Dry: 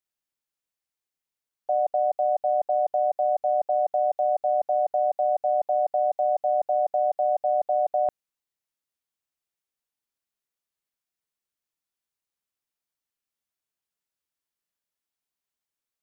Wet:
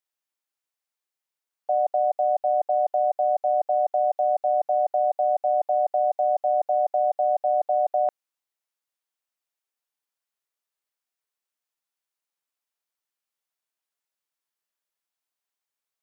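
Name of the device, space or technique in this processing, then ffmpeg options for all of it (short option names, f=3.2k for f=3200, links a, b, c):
filter by subtraction: -filter_complex "[0:a]asplit=2[a][b];[b]lowpass=780,volume=-1[c];[a][c]amix=inputs=2:normalize=0"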